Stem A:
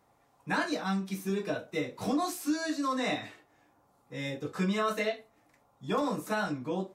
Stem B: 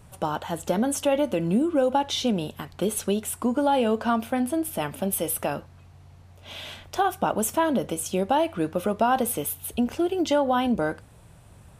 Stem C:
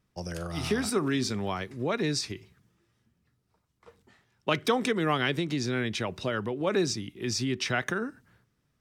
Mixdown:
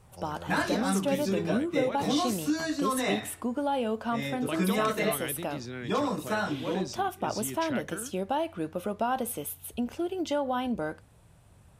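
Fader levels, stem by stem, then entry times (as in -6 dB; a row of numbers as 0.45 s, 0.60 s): +1.5 dB, -7.0 dB, -9.5 dB; 0.00 s, 0.00 s, 0.00 s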